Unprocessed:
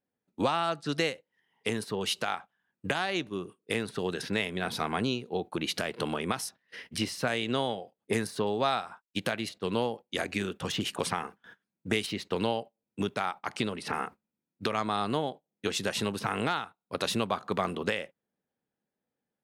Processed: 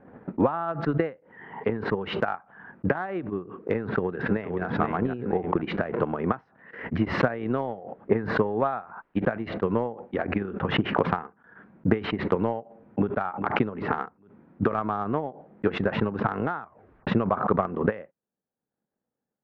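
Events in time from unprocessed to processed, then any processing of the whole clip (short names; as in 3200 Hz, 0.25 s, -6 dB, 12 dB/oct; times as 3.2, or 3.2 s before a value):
3.8–4.65 echo throw 0.48 s, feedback 25%, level -4.5 dB
12.57–13.14 echo throw 0.4 s, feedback 30%, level -14 dB
16.62 tape stop 0.45 s
whole clip: LPF 1600 Hz 24 dB/oct; transient shaper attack +9 dB, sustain -4 dB; backwards sustainer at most 86 dB/s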